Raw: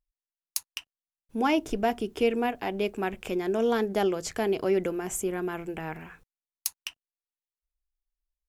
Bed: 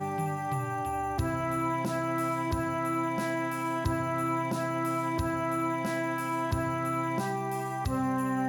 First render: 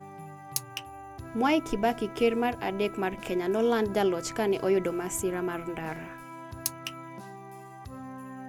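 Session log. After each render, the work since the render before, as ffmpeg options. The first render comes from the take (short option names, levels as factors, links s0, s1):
-filter_complex "[1:a]volume=0.237[s0];[0:a][s0]amix=inputs=2:normalize=0"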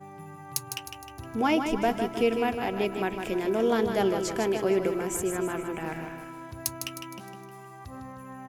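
-af "aecho=1:1:155|310|465|620|775:0.447|0.205|0.0945|0.0435|0.02"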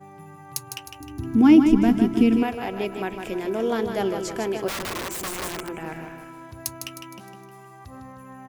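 -filter_complex "[0:a]asettb=1/sr,asplit=3[s0][s1][s2];[s0]atrim=end=1.004[s3];[s1]atrim=start=1:end=2.43,asetpts=PTS-STARTPTS,afade=t=in:d=0.004:c=qsin,afade=t=out:st=1.426:d=0.004:c=qsin,lowshelf=f=390:t=q:w=3:g=9[s4];[s2]atrim=start=2.426[s5];[s3][s4]acrossfade=d=0.004:c1=hsin:c2=qsin[s6];[s6][s5]acrossfade=d=0.004:c1=qsin:c2=hsin,asettb=1/sr,asplit=3[s7][s8][s9];[s7]atrim=end=4.684[s10];[s8]atrim=start=4.68:end=5.69,asetpts=PTS-STARTPTS,afade=t=in:d=0.004:c=qsin,afade=t=out:st=1.006:d=0.004:c=qsin,aeval=exprs='(mod(18.8*val(0)+1,2)-1)/18.8':c=same[s11];[s9]atrim=start=5.686[s12];[s10][s11]acrossfade=d=0.004:c1=hsin:c2=qsin[s13];[s13][s12]acrossfade=d=0.004:c1=qsin:c2=hsin"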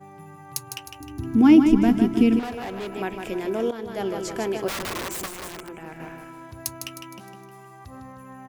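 -filter_complex "[0:a]asettb=1/sr,asplit=3[s0][s1][s2];[s0]atrim=end=2.394[s3];[s1]atrim=start=2.39:end=2.9,asetpts=PTS-STARTPTS,afade=t=in:d=0.004:c=qsin,afade=t=out:st=0.506:d=0.004:c=qsin,volume=28.2,asoftclip=hard,volume=0.0355[s4];[s2]atrim=start=2.896[s5];[s3][s4]acrossfade=d=0.004:c1=hsin:c2=qsin[s6];[s6][s5]acrossfade=d=0.004:c1=qsin:c2=hsin,asplit=4[s7][s8][s9][s10];[s7]atrim=end=3.71,asetpts=PTS-STARTPTS,afade=t=out:st=3.706:d=0.004:c=hsin:silence=0.211349[s11];[s8]atrim=start=3.71:end=5.262,asetpts=PTS-STARTPTS,afade=t=in:d=0.79:c=qsin:silence=0.211349[s12];[s9]atrim=start=5.258:end=6.002,asetpts=PTS-STARTPTS,volume=0.531[s13];[s10]atrim=start=5.998[s14];[s11][s12]concat=n=2:v=0:a=1[s15];[s15][s13]acrossfade=d=0.004:c1=hsin:c2=hsin[s16];[s16][s14]acrossfade=d=0.004:c1=hsin:c2=hsin"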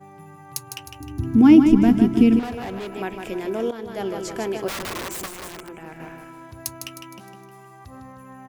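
-filter_complex "[0:a]asettb=1/sr,asplit=3[s0][s1][s2];[s0]atrim=end=0.784[s3];[s1]atrim=start=0.78:end=2.79,asetpts=PTS-STARTPTS,afade=t=in:d=0.004:c=qsin,afade=t=out:st=2.006:d=0.004:c=qsin,equalizer=f=92:w=0.52:g=7[s4];[s2]atrim=start=2.786[s5];[s3][s4]acrossfade=d=0.004:c1=hsin:c2=qsin[s6];[s6][s5]acrossfade=d=0.004:c1=qsin:c2=hsin"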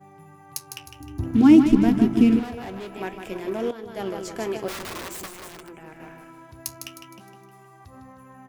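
-filter_complex "[0:a]asplit=2[s0][s1];[s1]acrusher=bits=3:mix=0:aa=0.5,volume=0.316[s2];[s0][s2]amix=inputs=2:normalize=0,flanger=delay=6.1:depth=8.8:regen=-67:speed=0.53:shape=triangular"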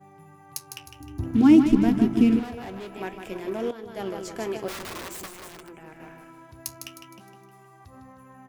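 -af "volume=0.794"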